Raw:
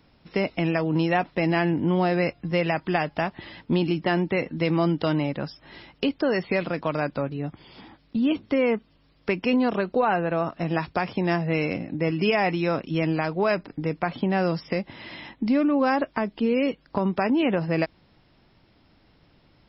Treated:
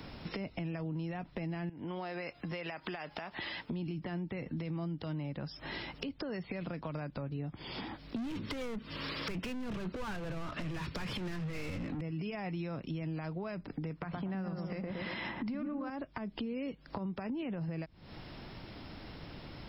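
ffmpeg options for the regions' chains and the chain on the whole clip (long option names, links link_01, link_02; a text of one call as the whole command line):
ffmpeg -i in.wav -filter_complex "[0:a]asettb=1/sr,asplit=3[link_01][link_02][link_03];[link_01]atrim=end=1.694[link_04];[link_02]atrim=start=1.69:end=3.71,asetpts=PTS-STARTPTS,afade=type=in:duration=0.004:curve=qsin,afade=type=out:start_time=2.016:duration=0.004:curve=qsin,lowshelf=frequency=410:gain=-11.5,acompressor=threshold=-37dB:ratio=5:attack=3.2:release=140:knee=1:detection=peak[link_05];[link_03]atrim=start=3.706[link_06];[link_04][link_05]acrossfade=duration=0.004:curve1=hsin:curve2=qsin[link_07];[link_07][link_06]acrossfade=duration=0.004:curve1=qsin:curve2=hsin,asettb=1/sr,asplit=3[link_08][link_09][link_10];[link_08]atrim=end=8.164[link_11];[link_09]atrim=start=8.16:end=12.01,asetpts=PTS-STARTPTS,afade=type=in:duration=0.004:curve=qsin,afade=type=out:start_time=3.846:duration=0.004:curve=qsin,equalizer=frequency=740:width_type=o:width=0.44:gain=-10,asplit=2[link_12][link_13];[link_13]highpass=frequency=720:poles=1,volume=37dB,asoftclip=type=tanh:threshold=-12dB[link_14];[link_12][link_14]amix=inputs=2:normalize=0,lowpass=frequency=3500:poles=1,volume=-6dB[link_15];[link_10]atrim=start=12.006[link_16];[link_11][link_15]acrossfade=duration=0.004:curve1=hsin:curve2=qsin[link_17];[link_17][link_16]acrossfade=duration=0.004:curve1=qsin:curve2=hsin,asettb=1/sr,asplit=3[link_18][link_19][link_20];[link_18]atrim=end=13.904[link_21];[link_19]atrim=start=13.9:end=15.9,asetpts=PTS-STARTPTS,afade=type=in:duration=0.004:curve=qsin,afade=type=out:start_time=1.996:duration=0.004:curve=qsin,equalizer=frequency=1300:width=0.99:gain=7.5,asplit=2[link_22][link_23];[link_23]adelay=115,lowpass=frequency=890:poles=1,volume=-3.5dB,asplit=2[link_24][link_25];[link_25]adelay=115,lowpass=frequency=890:poles=1,volume=0.52,asplit=2[link_26][link_27];[link_27]adelay=115,lowpass=frequency=890:poles=1,volume=0.52,asplit=2[link_28][link_29];[link_29]adelay=115,lowpass=frequency=890:poles=1,volume=0.52,asplit=2[link_30][link_31];[link_31]adelay=115,lowpass=frequency=890:poles=1,volume=0.52,asplit=2[link_32][link_33];[link_33]adelay=115,lowpass=frequency=890:poles=1,volume=0.52,asplit=2[link_34][link_35];[link_35]adelay=115,lowpass=frequency=890:poles=1,volume=0.52[link_36];[link_22][link_24][link_26][link_28][link_30][link_32][link_34][link_36]amix=inputs=8:normalize=0,atrim=end_sample=88200[link_37];[link_20]atrim=start=15.896[link_38];[link_21][link_37]acrossfade=duration=0.004:curve1=hsin:curve2=qsin[link_39];[link_39][link_38]acrossfade=duration=0.004:curve1=qsin:curve2=hsin,acrossover=split=170[link_40][link_41];[link_41]acompressor=threshold=-35dB:ratio=6[link_42];[link_40][link_42]amix=inputs=2:normalize=0,alimiter=level_in=4dB:limit=-24dB:level=0:latency=1:release=150,volume=-4dB,acompressor=threshold=-53dB:ratio=3,volume=12dB" out.wav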